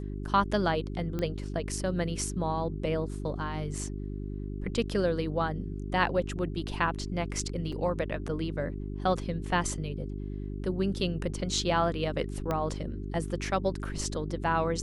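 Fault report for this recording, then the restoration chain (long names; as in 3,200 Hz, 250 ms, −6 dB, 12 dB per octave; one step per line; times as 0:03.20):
mains hum 50 Hz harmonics 8 −36 dBFS
0:01.19: click −20 dBFS
0:07.72: drop-out 4.8 ms
0:12.51: click −17 dBFS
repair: click removal
hum removal 50 Hz, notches 8
repair the gap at 0:07.72, 4.8 ms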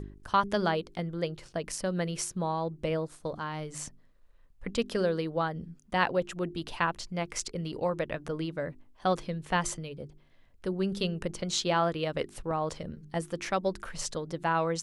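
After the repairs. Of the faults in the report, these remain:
0:01.19: click
0:12.51: click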